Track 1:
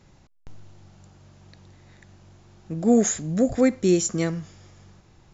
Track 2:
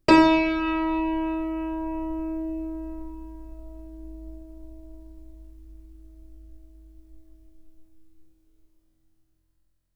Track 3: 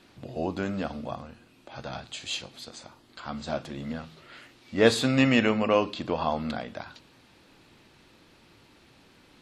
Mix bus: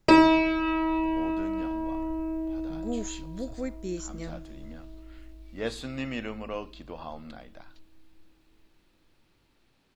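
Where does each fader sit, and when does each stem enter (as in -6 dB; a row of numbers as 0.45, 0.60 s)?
-15.0, -1.5, -12.5 dB; 0.00, 0.00, 0.80 s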